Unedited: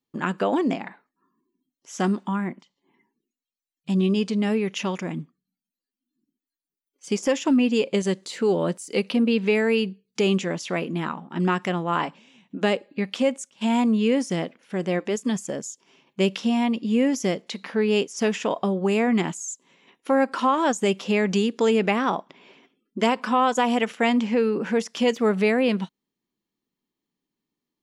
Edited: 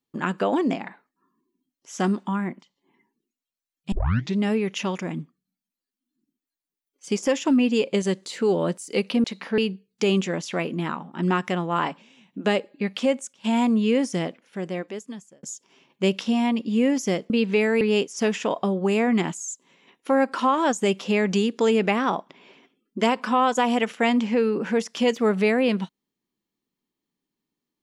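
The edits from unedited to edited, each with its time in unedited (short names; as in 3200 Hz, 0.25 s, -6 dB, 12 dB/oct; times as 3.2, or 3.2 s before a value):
3.92 tape start 0.45 s
9.24–9.75 swap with 17.47–17.81
14.36–15.6 fade out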